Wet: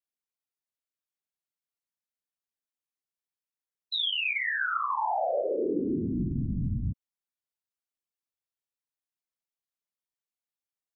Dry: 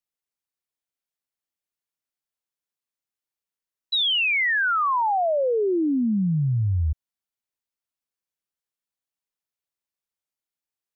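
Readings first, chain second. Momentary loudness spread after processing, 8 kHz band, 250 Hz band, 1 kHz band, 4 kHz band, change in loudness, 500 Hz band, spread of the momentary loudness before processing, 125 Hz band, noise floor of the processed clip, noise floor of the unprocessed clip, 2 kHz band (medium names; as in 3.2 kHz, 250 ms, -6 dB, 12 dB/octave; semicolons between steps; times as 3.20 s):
6 LU, no reading, -7.0 dB, -7.0 dB, -7.5 dB, -7.0 dB, -6.5 dB, 7 LU, -9.0 dB, under -85 dBFS, under -85 dBFS, -7.5 dB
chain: whisper effect; trim -7 dB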